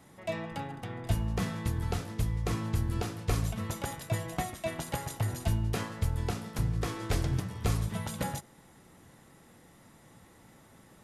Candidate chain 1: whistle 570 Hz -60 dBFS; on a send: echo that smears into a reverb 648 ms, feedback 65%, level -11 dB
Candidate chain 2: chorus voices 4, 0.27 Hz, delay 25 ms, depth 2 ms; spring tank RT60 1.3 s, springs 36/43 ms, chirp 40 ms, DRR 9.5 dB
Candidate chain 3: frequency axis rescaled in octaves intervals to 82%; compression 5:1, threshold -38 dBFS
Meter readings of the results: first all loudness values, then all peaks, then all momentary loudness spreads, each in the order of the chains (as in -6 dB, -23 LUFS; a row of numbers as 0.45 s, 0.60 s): -33.5 LUFS, -34.0 LUFS, -42.5 LUFS; -17.5 dBFS, -17.5 dBFS, -27.0 dBFS; 15 LU, 9 LU, 18 LU